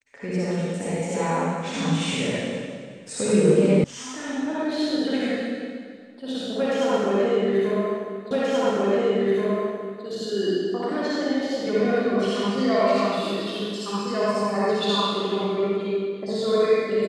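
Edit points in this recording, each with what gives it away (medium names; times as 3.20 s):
3.84 s: sound stops dead
8.31 s: repeat of the last 1.73 s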